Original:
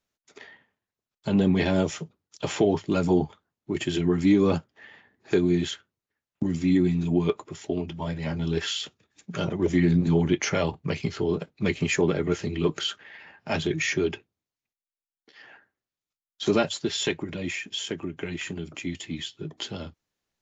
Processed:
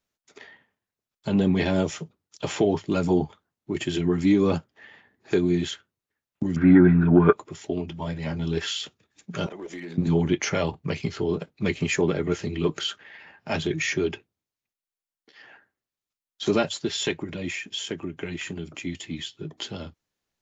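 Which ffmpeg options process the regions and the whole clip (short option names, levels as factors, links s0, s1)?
-filter_complex "[0:a]asettb=1/sr,asplit=3[s0][s1][s2];[s0]atrim=end=6.564[s3];[s1]atrim=start=6.56:end=7.33,asetpts=PTS-STARTPTS,afade=t=in:d=0.004:c=qsin,afade=t=out:st=0.766:d=0.004:c=qsin,acontrast=78,lowpass=f=1500:t=q:w=12,aemphasis=mode=reproduction:type=50kf[s4];[s2]atrim=start=7.326[s5];[s3][s4]acrossfade=d=0.004:c1=hsin:c2=qsin[s6];[s6][s5]acrossfade=d=0.004:c1=qsin:c2=hsin,asettb=1/sr,asplit=3[s7][s8][s9];[s7]atrim=end=9.464[s10];[s8]atrim=start=9.46:end=9.98,asetpts=PTS-STARTPTS,afade=t=in:d=0.004:c=qsin,afade=t=out:st=0.516:d=0.004:c=qsin,highpass=410,acompressor=threshold=0.02:ratio=4:attack=3.2:release=140:knee=1:detection=peak,aeval=exprs='clip(val(0),-1,0.0266)':c=same[s11];[s9]atrim=start=9.976[s12];[s10][s11]acrossfade=d=0.004:c1=hsin:c2=qsin[s13];[s13][s12]acrossfade=d=0.004:c1=qsin:c2=hsin"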